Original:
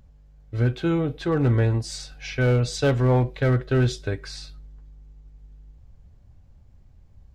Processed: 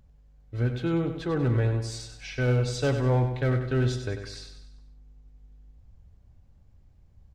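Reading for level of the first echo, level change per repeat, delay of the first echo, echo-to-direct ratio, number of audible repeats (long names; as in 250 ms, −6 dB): −8.5 dB, −6.5 dB, 96 ms, −7.5 dB, 5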